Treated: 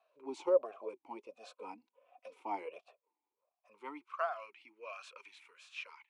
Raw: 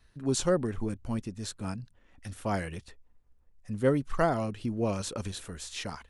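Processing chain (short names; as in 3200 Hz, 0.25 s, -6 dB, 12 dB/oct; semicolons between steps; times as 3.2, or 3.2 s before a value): high-pass sweep 610 Hz -> 1700 Hz, 3.28–4.36; 1.28–2.4 comb 4 ms, depth 66%; vowel sweep a-u 1.4 Hz; gain +5 dB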